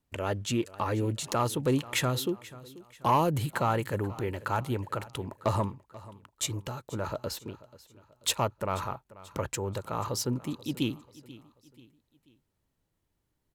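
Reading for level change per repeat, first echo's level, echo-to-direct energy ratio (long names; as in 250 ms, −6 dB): −7.5 dB, −19.0 dB, −18.0 dB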